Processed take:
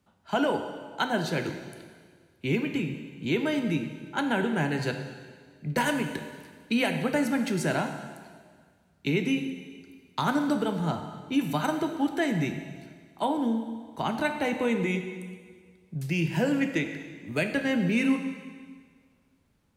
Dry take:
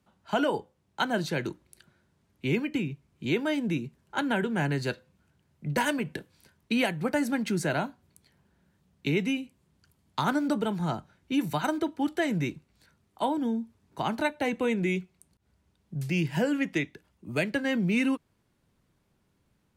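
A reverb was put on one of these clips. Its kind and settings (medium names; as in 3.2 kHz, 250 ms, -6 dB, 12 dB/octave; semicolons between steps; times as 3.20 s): plate-style reverb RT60 1.7 s, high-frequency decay 1×, DRR 5.5 dB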